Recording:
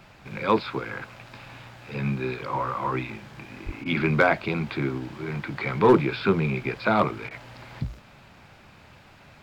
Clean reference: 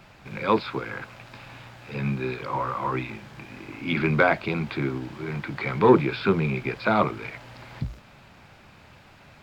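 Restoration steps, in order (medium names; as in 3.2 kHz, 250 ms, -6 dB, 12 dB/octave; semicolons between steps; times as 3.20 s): clip repair -9 dBFS; 3.65–3.77 s: high-pass 140 Hz 24 dB/octave; interpolate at 3.84/7.29 s, 16 ms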